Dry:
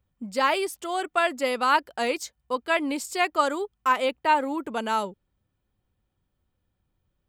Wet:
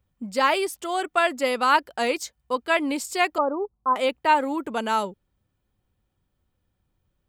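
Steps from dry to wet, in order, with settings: 3.38–3.96 steep low-pass 1100 Hz 36 dB/oct; gain +2 dB

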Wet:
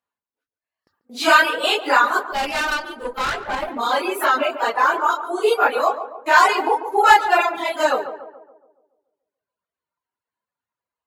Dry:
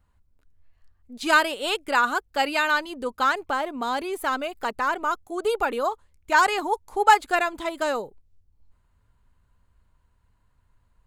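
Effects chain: phase scrambler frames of 0.1 s; reverb removal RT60 1.6 s; gate with hold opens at -46 dBFS; HPF 380 Hz 12 dB/oct; bell 8500 Hz -5 dB 0.48 oct; in parallel at -1 dB: compressor, threshold -29 dBFS, peak gain reduction 16 dB; on the sum: sine folder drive 4 dB, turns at 0.5 dBFS; 2.31–3.68 tube stage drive 16 dB, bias 0.8; on a send: tape echo 0.142 s, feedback 56%, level -9 dB, low-pass 1200 Hz; on the sum: gain -2.5 dB

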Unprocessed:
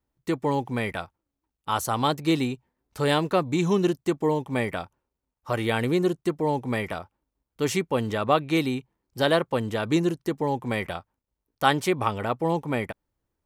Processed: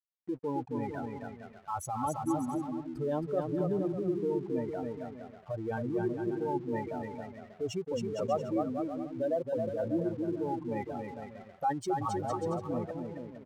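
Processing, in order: spectral contrast raised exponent 3.1; bouncing-ball echo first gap 0.27 s, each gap 0.7×, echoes 5; crossover distortion -48.5 dBFS; gain -8.5 dB

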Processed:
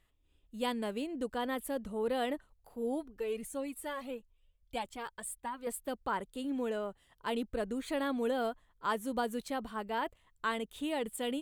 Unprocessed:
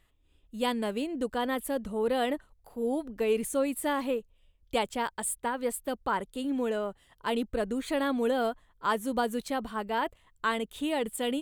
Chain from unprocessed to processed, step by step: 3.03–5.67 cascading flanger rising 1.6 Hz; gain -5 dB

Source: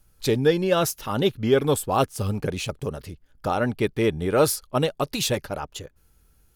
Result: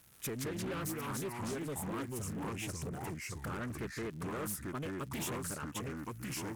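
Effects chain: fixed phaser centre 1800 Hz, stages 4; compressor 5:1, threshold -37 dBFS, peak gain reduction 17.5 dB; HPF 130 Hz 12 dB/oct; echoes that change speed 0.123 s, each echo -3 st, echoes 2; crackle 130/s -49 dBFS; soft clip -36 dBFS, distortion -12 dB; high shelf 7500 Hz +5.5 dB; Doppler distortion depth 0.36 ms; gain +2 dB

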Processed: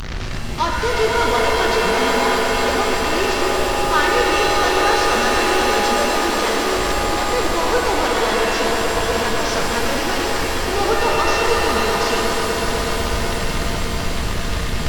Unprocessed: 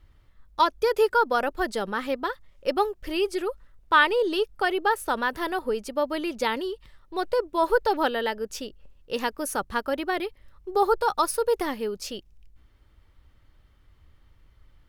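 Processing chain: delta modulation 32 kbps, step -19.5 dBFS; swelling echo 0.123 s, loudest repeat 5, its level -10 dB; shimmer reverb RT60 2.2 s, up +7 st, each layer -2 dB, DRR 1.5 dB; gain -1 dB

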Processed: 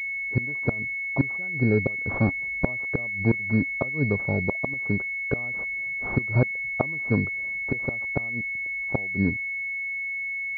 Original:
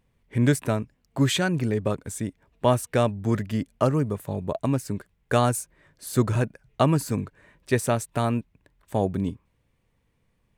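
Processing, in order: 2.14–2.66 half-waves squared off; flipped gate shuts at -14 dBFS, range -25 dB; pulse-width modulation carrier 2200 Hz; gain +4 dB

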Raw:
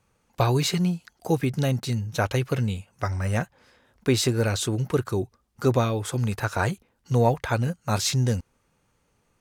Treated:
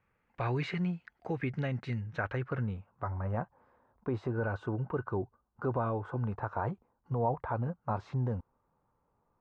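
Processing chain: 4.3–6.31 small resonant body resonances 1500/2800 Hz, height 12 dB; limiter -16 dBFS, peak gain reduction 6.5 dB; low-pass sweep 2000 Hz -> 1000 Hz, 1.95–3.15; gain -8.5 dB

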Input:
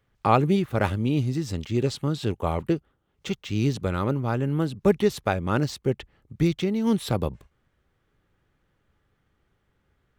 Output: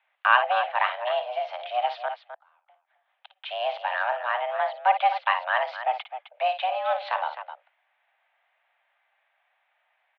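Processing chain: tilt shelf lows -3.5 dB, about 1300 Hz; in parallel at -4 dB: one-sided clip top -24.5 dBFS; 2.08–3.42 on the sum: flipped gate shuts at -23 dBFS, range -38 dB; on a send: loudspeakers at several distances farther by 19 m -10 dB, 89 m -11 dB; on the sum: mistuned SSB +370 Hz 270–2800 Hz

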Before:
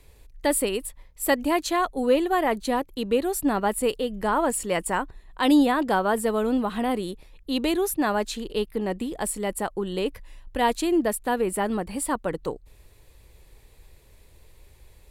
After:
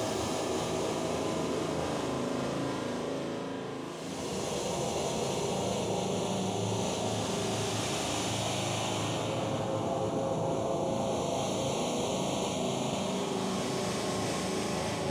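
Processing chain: noise vocoder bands 2; envelope flanger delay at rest 8.4 ms, full sweep at -19.5 dBFS; spring tank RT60 1.5 s, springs 37 ms, chirp 30 ms, DRR 1 dB; Paulstretch 6.1×, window 0.50 s, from 0.45; reverse; compressor 6:1, threshold -29 dBFS, peak gain reduction 14 dB; reverse

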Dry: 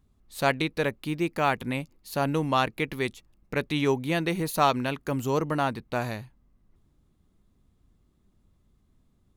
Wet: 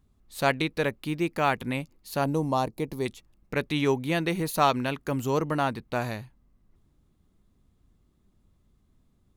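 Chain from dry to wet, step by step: 2.24–3.06 band shelf 2100 Hz -13.5 dB

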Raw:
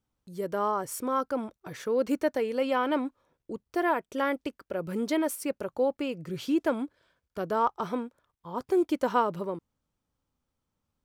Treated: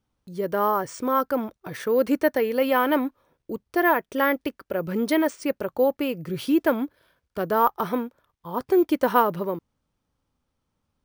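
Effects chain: dynamic EQ 1800 Hz, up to +5 dB, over -51 dBFS, Q 4.1; careless resampling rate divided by 3×, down filtered, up hold; gain +5.5 dB

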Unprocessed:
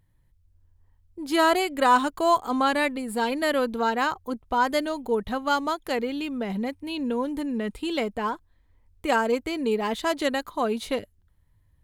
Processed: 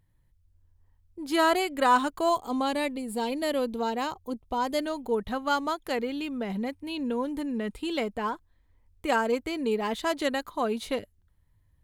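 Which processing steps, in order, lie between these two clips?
2.29–4.79 bell 1500 Hz -10 dB 0.92 oct; gain -2.5 dB

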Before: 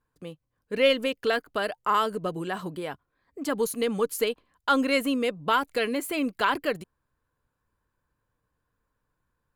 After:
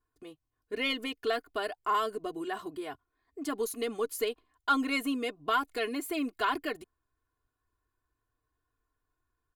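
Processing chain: comb 2.8 ms, depth 87%; gain -7.5 dB

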